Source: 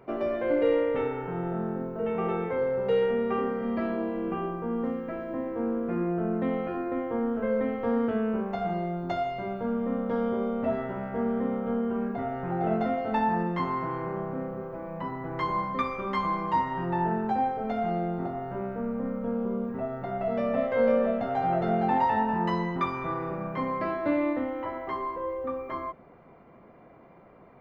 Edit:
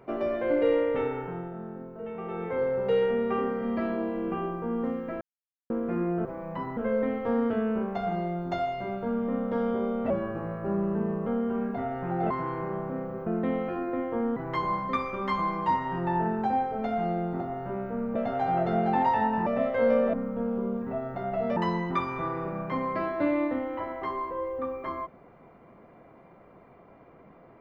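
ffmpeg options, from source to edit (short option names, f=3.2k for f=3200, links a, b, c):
-filter_complex "[0:a]asplit=16[a][b][c][d][e][f][g][h][i][j][k][l][m][n][o][p];[a]atrim=end=1.51,asetpts=PTS-STARTPTS,afade=t=out:st=1.18:d=0.33:silence=0.398107[q];[b]atrim=start=1.51:end=2.27,asetpts=PTS-STARTPTS,volume=-8dB[r];[c]atrim=start=2.27:end=5.21,asetpts=PTS-STARTPTS,afade=t=in:d=0.33:silence=0.398107,afade=t=out:st=2.936:d=0.004:c=hsin[s];[d]atrim=start=5.21:end=5.7,asetpts=PTS-STARTPTS,volume=0[t];[e]atrim=start=5.7:end=6.252,asetpts=PTS-STARTPTS,afade=t=in:d=0.004:c=hsin[u];[f]atrim=start=14.698:end=15.222[v];[g]atrim=start=7.348:end=10.684[w];[h]atrim=start=10.68:end=11.67,asetpts=PTS-STARTPTS,asetrate=37485,aresample=44100[x];[i]atrim=start=11.666:end=12.712[y];[j]atrim=start=13.738:end=14.702[z];[k]atrim=start=6.248:end=7.352[aa];[l]atrim=start=15.218:end=19.012[ab];[m]atrim=start=21.108:end=22.422[ac];[n]atrim=start=20.438:end=21.112[ad];[o]atrim=start=19.008:end=20.442[ae];[p]atrim=start=22.418[af];[q][r][s][t][u]concat=n=5:v=0:a=1[ag];[ag][v]acrossfade=d=0.004:c1=hsin:c2=hsin[ah];[ah][w]acrossfade=d=0.004:c1=hsin:c2=hsin[ai];[ai][x]acrossfade=d=0.004:c1=hsin:c2=hsin[aj];[aj][y]acrossfade=d=0.004:c1=hsin:c2=hsin[ak];[ak][z]acrossfade=d=0.004:c1=hsin:c2=hsin[al];[al][aa]acrossfade=d=0.004:c1=hsin:c2=hsin[am];[am][ab]acrossfade=d=0.004:c1=hsin:c2=hsin[an];[an][ac]acrossfade=d=0.004:c1=hsin:c2=hsin[ao];[ao][ad]acrossfade=d=0.004:c1=hsin:c2=hsin[ap];[ap][ae]acrossfade=d=0.004:c1=hsin:c2=hsin[aq];[aq][af]acrossfade=d=0.004:c1=hsin:c2=hsin"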